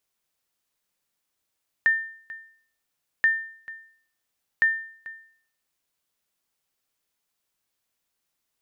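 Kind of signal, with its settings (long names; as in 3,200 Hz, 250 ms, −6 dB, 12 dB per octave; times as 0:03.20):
ping with an echo 1,800 Hz, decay 0.55 s, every 1.38 s, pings 3, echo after 0.44 s, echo −19 dB −13 dBFS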